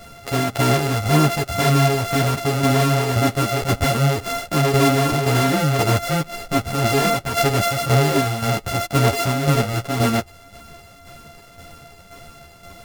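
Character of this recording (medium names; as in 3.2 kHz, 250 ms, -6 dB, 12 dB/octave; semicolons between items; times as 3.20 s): a buzz of ramps at a fixed pitch in blocks of 64 samples; tremolo saw down 1.9 Hz, depth 55%; a shimmering, thickened sound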